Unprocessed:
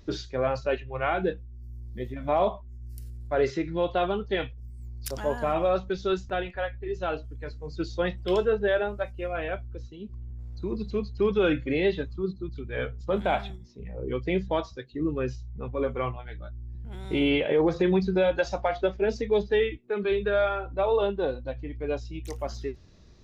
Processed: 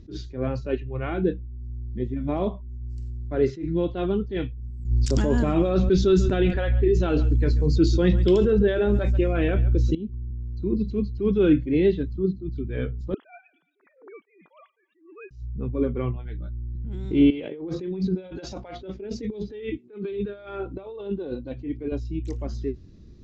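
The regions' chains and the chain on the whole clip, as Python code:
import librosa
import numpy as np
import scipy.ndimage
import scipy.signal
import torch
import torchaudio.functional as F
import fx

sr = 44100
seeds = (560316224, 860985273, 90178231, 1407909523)

y = fx.chain(x, sr, fx.high_shelf(hz=6400.0, db=11.0),
    fx.echo_single(ms=137, db=-22.5),
    fx.env_flatten(amount_pct=70), at=(4.85, 9.95))
y = fx.chain(y, sr, fx.sine_speech(),
    fx.highpass(hz=1100.0, slope=12),
    fx.echo_wet_highpass(ms=114, feedback_pct=51, hz=1700.0, wet_db=-19), at=(13.14, 15.31))
y = fx.chain(y, sr, fx.highpass(hz=320.0, slope=6),
    fx.peak_eq(hz=1700.0, db=-4.0, octaves=0.26),
    fx.over_compress(threshold_db=-34.0, ratio=-1.0), at=(17.3, 21.92))
y = scipy.signal.sosfilt(scipy.signal.ellip(4, 1.0, 40, 7700.0, 'lowpass', fs=sr, output='sos'), y)
y = fx.low_shelf_res(y, sr, hz=460.0, db=12.0, q=1.5)
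y = fx.attack_slew(y, sr, db_per_s=150.0)
y = y * librosa.db_to_amplitude(-4.5)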